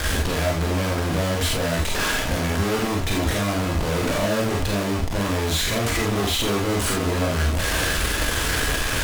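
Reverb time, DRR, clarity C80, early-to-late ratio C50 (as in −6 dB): non-exponential decay, −2.0 dB, 11.5 dB, 4.5 dB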